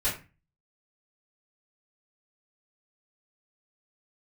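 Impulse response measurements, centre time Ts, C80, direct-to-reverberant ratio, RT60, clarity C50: 31 ms, 12.5 dB, -11.0 dB, 0.30 s, 7.5 dB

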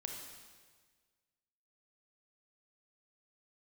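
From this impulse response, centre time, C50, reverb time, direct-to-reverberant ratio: 57 ms, 2.5 dB, 1.5 s, 1.5 dB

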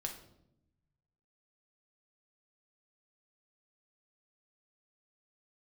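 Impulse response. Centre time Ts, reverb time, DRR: 20 ms, 0.80 s, 2.5 dB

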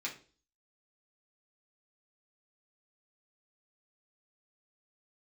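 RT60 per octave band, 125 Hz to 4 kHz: 0.45 s, 0.50 s, 0.45 s, 0.35 s, 0.35 s, 0.40 s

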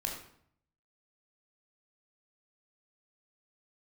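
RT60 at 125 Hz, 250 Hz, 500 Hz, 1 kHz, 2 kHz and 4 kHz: 0.90 s, 0.75 s, 0.65 s, 0.65 s, 0.55 s, 0.50 s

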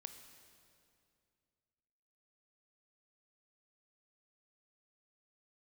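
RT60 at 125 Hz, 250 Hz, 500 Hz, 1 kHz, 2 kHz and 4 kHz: 2.9 s, 2.7 s, 2.5 s, 2.3 s, 2.2 s, 2.0 s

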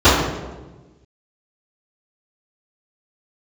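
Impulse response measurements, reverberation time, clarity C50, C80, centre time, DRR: 1.2 s, 1.0 dB, 4.0 dB, 72 ms, -20.5 dB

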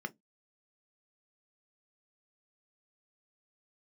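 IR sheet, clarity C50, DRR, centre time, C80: 27.5 dB, 7.5 dB, 3 ms, 42.0 dB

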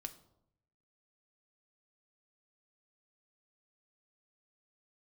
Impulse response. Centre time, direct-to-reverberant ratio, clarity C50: 6 ms, 7.0 dB, 14.5 dB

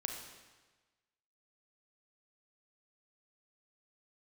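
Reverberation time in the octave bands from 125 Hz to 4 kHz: 1.3 s, 1.2 s, 1.3 s, 1.3 s, 1.3 s, 1.2 s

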